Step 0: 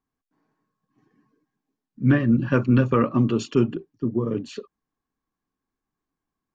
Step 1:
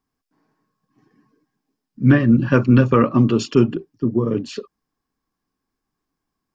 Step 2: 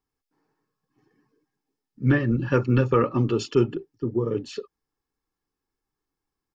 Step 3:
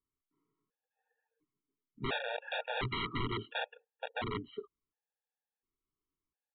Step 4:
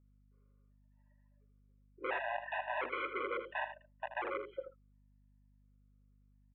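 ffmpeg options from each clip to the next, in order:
ffmpeg -i in.wav -af "equalizer=frequency=5100:width=6.8:gain=8,volume=5dB" out.wav
ffmpeg -i in.wav -af "aecho=1:1:2.3:0.48,volume=-6dB" out.wav
ffmpeg -i in.wav -af "aresample=8000,aeval=exprs='(mod(8.91*val(0)+1,2)-1)/8.91':channel_layout=same,aresample=44100,afftfilt=real='re*gt(sin(2*PI*0.71*pts/sr)*(1-2*mod(floor(b*sr/1024/470),2)),0)':imag='im*gt(sin(2*PI*0.71*pts/sr)*(1-2*mod(floor(b*sr/1024/470),2)),0)':win_size=1024:overlap=0.75,volume=-8dB" out.wav
ffmpeg -i in.wav -af "highpass=frequency=230:width_type=q:width=0.5412,highpass=frequency=230:width_type=q:width=1.307,lowpass=frequency=2400:width_type=q:width=0.5176,lowpass=frequency=2400:width_type=q:width=0.7071,lowpass=frequency=2400:width_type=q:width=1.932,afreqshift=120,aecho=1:1:80:0.316,aeval=exprs='val(0)+0.000501*(sin(2*PI*50*n/s)+sin(2*PI*2*50*n/s)/2+sin(2*PI*3*50*n/s)/3+sin(2*PI*4*50*n/s)/4+sin(2*PI*5*50*n/s)/5)':channel_layout=same" out.wav

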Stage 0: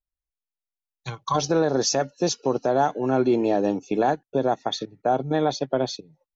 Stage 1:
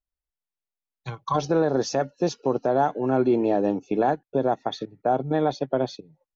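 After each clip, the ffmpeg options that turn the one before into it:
ffmpeg -i in.wav -af "aemphasis=mode=reproduction:type=75fm,volume=-1dB" out.wav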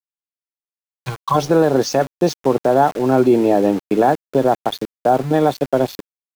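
ffmpeg -i in.wav -af "aeval=exprs='val(0)*gte(abs(val(0)),0.015)':channel_layout=same,volume=7.5dB" out.wav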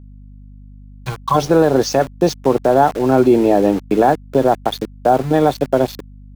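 ffmpeg -i in.wav -af "aeval=exprs='val(0)+0.0112*(sin(2*PI*50*n/s)+sin(2*PI*2*50*n/s)/2+sin(2*PI*3*50*n/s)/3+sin(2*PI*4*50*n/s)/4+sin(2*PI*5*50*n/s)/5)':channel_layout=same,volume=1.5dB" out.wav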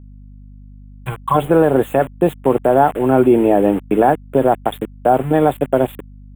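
ffmpeg -i in.wav -af "asuperstop=centerf=5200:order=8:qfactor=1.1" out.wav

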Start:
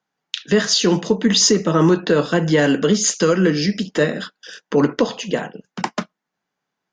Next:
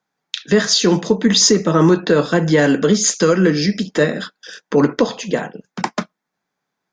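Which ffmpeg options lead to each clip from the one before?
ffmpeg -i in.wav -af "bandreject=frequency=2900:width=9.7,volume=2dB" out.wav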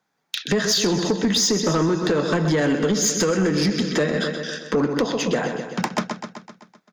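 ffmpeg -i in.wav -filter_complex "[0:a]asplit=2[link_01][link_02];[link_02]aecho=0:1:128|256|384|512|640|768|896:0.282|0.163|0.0948|0.055|0.0319|0.0185|0.0107[link_03];[link_01][link_03]amix=inputs=2:normalize=0,acompressor=threshold=-17dB:ratio=10,asoftclip=type=tanh:threshold=-16dB,volume=3dB" out.wav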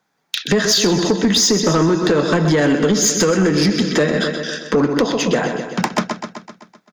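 ffmpeg -i in.wav -af "aecho=1:1:125:0.112,volume=5dB" out.wav

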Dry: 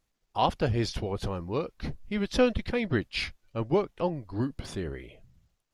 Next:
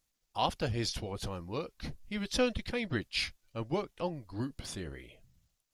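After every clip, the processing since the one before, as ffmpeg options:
ffmpeg -i in.wav -af "highshelf=frequency=3400:gain=11.5,bandreject=frequency=400:width=12,volume=-6.5dB" out.wav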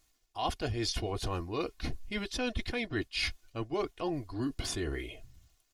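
ffmpeg -i in.wav -af "highshelf=frequency=9800:gain=-3.5,aecho=1:1:2.8:0.57,areverse,acompressor=threshold=-39dB:ratio=6,areverse,volume=8.5dB" out.wav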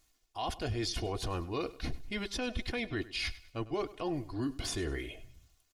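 ffmpeg -i in.wav -af "alimiter=level_in=1.5dB:limit=-24dB:level=0:latency=1:release=43,volume=-1.5dB,aecho=1:1:100|200|300:0.126|0.0478|0.0182" out.wav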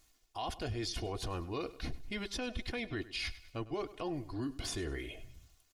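ffmpeg -i in.wav -af "acompressor=threshold=-47dB:ratio=1.5,volume=2.5dB" out.wav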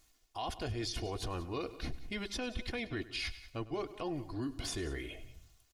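ffmpeg -i in.wav -af "aecho=1:1:182:0.133" out.wav

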